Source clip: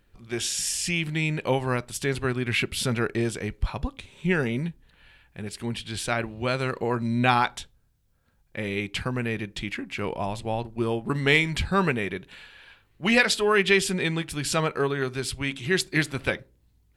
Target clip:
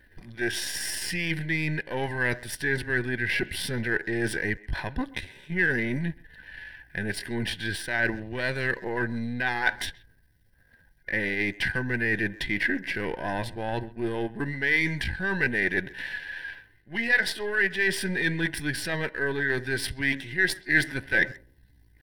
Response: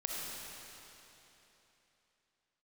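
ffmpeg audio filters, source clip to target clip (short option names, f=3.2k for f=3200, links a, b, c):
-filter_complex "[0:a]aeval=exprs='if(lt(val(0),0),0.447*val(0),val(0))':c=same,areverse,acompressor=threshold=-33dB:ratio=12,areverse,superequalizer=6b=1.41:10b=0.355:11b=3.98:15b=0.316,atempo=0.77,asplit=2[a][b];[b]adelay=130,highpass=300,lowpass=3.4k,asoftclip=type=hard:threshold=-26.5dB,volume=-21dB[c];[a][c]amix=inputs=2:normalize=0,volume=7dB"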